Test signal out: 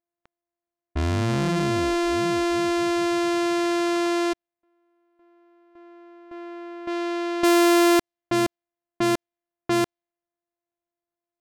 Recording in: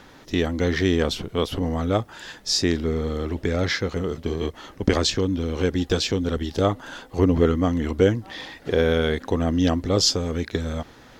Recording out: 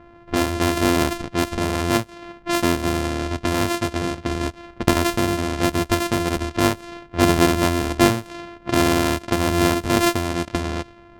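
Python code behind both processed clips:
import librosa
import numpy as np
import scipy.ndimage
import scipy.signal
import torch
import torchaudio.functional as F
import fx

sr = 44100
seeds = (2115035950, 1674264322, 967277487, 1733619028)

y = np.r_[np.sort(x[:len(x) // 128 * 128].reshape(-1, 128), axis=1).ravel(), x[len(x) // 128 * 128:]]
y = fx.env_lowpass(y, sr, base_hz=1600.0, full_db=-19.0)
y = F.gain(torch.from_numpy(y), 2.0).numpy()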